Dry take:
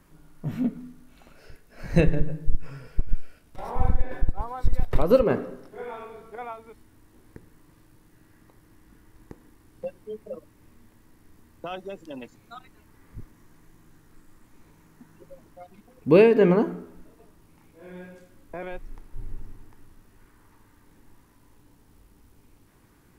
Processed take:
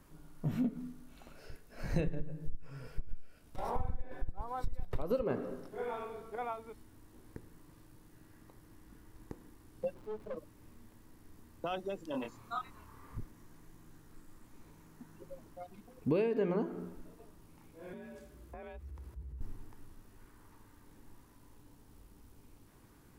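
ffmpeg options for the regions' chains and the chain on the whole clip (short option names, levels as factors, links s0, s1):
-filter_complex "[0:a]asettb=1/sr,asplit=3[s0][s1][s2];[s0]atrim=end=9.944[s3];[s1]atrim=start=9.94:end=10.37,asetpts=PTS-STARTPTS,afade=t=in:d=0.004:c=qsin,afade=t=out:st=0.426:d=0.004:c=qsin,aeval=exprs='val(0)+0.5*0.00422*sgn(val(0))':c=same,highshelf=f=3700:g=-11,aeval=exprs='(tanh(44.7*val(0)+0.55)-tanh(0.55))/44.7':c=same[s4];[s2]atrim=start=10.366[s5];[s3][s4]acrossfade=d=0.004:c1=hsin:c2=qsin[s6];[s6][s5]acrossfade=d=0.004:c1=qsin:c2=hsin,asettb=1/sr,asplit=3[s7][s8][s9];[s7]atrim=end=12.114[s10];[s8]atrim=start=12.11:end=13.18,asetpts=PTS-STARTPTS,afade=t=in:d=0.004:c=qsin,afade=t=out:st=1.066:d=0.004:c=qsin,equalizer=f=1100:w=2.4:g=11.5,asplit=2[s11][s12];[s12]adelay=27,volume=0.668[s13];[s11][s13]amix=inputs=2:normalize=0,atrim=end_sample=47187[s14];[s9]atrim=start=13.176[s15];[s10][s14]acrossfade=d=0.004:c1=hsin:c2=qsin[s16];[s16][s15]acrossfade=d=0.004:c1=qsin:c2=hsin,asettb=1/sr,asplit=3[s17][s18][s19];[s17]atrim=end=17.934[s20];[s18]atrim=start=17.93:end=19.41,asetpts=PTS-STARTPTS,afade=t=in:d=0.004:c=qsin,afade=t=out:st=1.476:d=0.004:c=qsin,acompressor=threshold=0.00794:ratio=6:attack=3.2:release=140:knee=1:detection=peak,afreqshift=46[s21];[s19]atrim=start=19.406[s22];[s20][s21]acrossfade=d=0.004:c1=hsin:c2=qsin[s23];[s23][s22]acrossfade=d=0.004:c1=qsin:c2=hsin,equalizer=f=2000:w=1.5:g=-3,bandreject=f=178.1:t=h:w=4,bandreject=f=356.2:t=h:w=4,acompressor=threshold=0.0447:ratio=6,volume=0.794"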